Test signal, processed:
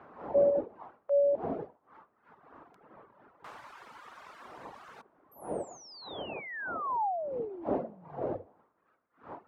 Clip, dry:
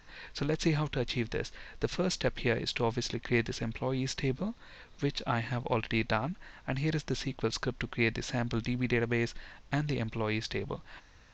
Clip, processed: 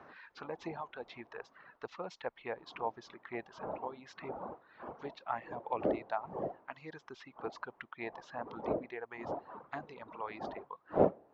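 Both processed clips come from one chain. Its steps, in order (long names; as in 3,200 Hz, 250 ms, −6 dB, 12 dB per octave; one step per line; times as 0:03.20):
wind on the microphone 370 Hz −31 dBFS
envelope filter 590–1,400 Hz, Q 2.1, down, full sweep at −20 dBFS
reverb reduction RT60 1.7 s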